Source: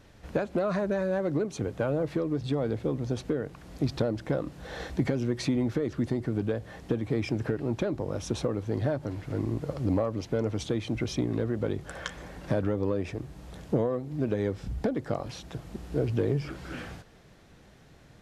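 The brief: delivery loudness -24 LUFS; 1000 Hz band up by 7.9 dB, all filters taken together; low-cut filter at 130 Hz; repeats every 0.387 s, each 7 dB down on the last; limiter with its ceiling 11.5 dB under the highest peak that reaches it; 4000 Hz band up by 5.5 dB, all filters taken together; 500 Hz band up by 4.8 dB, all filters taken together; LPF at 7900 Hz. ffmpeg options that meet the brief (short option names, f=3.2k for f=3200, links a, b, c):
-af "highpass=130,lowpass=7.9k,equalizer=f=500:t=o:g=3.5,equalizer=f=1k:t=o:g=9,equalizer=f=4k:t=o:g=6.5,alimiter=limit=-22dB:level=0:latency=1,aecho=1:1:387|774|1161|1548|1935:0.447|0.201|0.0905|0.0407|0.0183,volume=8dB"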